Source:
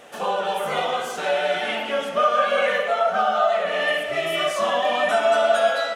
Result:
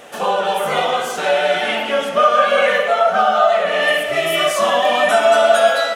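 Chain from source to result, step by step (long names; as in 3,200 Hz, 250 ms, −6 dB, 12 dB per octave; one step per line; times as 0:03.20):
high-shelf EQ 9,700 Hz +3 dB, from 0:03.83 +10 dB
level +6 dB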